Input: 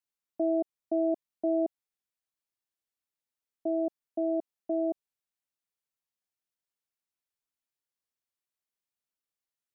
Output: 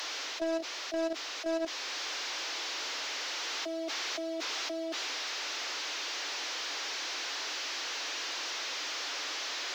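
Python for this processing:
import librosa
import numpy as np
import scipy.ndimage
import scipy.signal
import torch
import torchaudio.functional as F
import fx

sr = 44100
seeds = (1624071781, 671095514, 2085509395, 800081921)

y = fx.delta_mod(x, sr, bps=32000, step_db=-34.5)
y = scipy.signal.sosfilt(scipy.signal.butter(16, 270.0, 'highpass', fs=sr, output='sos'), y)
y = fx.low_shelf(y, sr, hz=470.0, db=-7.5)
y = fx.level_steps(y, sr, step_db=15)
y = fx.leveller(y, sr, passes=2)
y = fx.rider(y, sr, range_db=10, speed_s=0.5)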